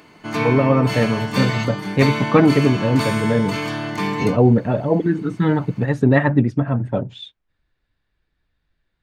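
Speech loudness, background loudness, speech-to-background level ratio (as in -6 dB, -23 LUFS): -19.0 LUFS, -24.5 LUFS, 5.5 dB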